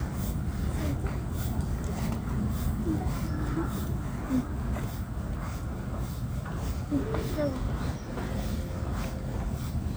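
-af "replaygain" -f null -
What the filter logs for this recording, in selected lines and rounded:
track_gain = +15.6 dB
track_peak = 0.116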